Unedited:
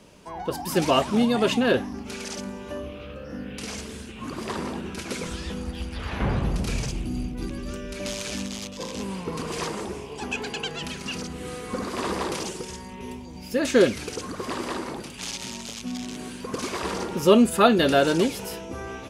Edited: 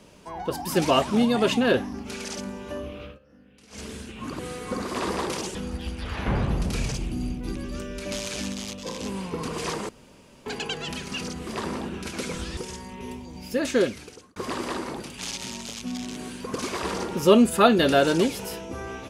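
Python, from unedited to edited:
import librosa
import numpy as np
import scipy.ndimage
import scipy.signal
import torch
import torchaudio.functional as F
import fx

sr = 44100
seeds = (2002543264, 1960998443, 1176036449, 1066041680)

y = fx.edit(x, sr, fx.fade_down_up(start_s=3.05, length_s=0.79, db=-19.5, fade_s=0.14),
    fx.swap(start_s=4.39, length_s=1.1, other_s=11.41, other_length_s=1.16),
    fx.room_tone_fill(start_s=9.83, length_s=0.57),
    fx.fade_out_span(start_s=13.46, length_s=0.9), tone=tone)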